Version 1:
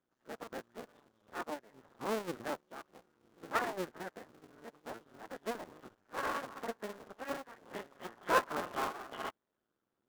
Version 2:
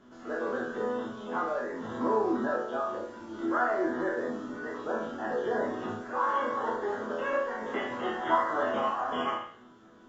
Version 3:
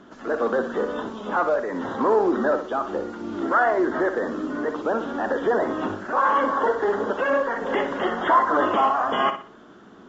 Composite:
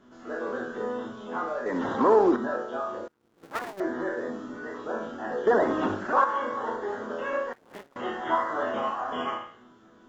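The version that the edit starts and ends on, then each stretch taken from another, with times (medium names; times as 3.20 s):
2
1.66–2.36 s: from 3
3.08–3.80 s: from 1
5.47–6.24 s: from 3
7.53–7.96 s: from 1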